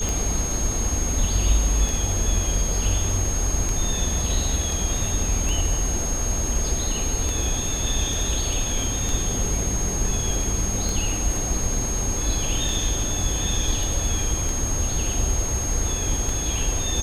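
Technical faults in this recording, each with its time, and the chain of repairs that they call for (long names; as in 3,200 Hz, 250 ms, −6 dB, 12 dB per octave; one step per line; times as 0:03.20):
scratch tick 33 1/3 rpm
whistle 6,500 Hz −27 dBFS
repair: click removal
notch filter 6,500 Hz, Q 30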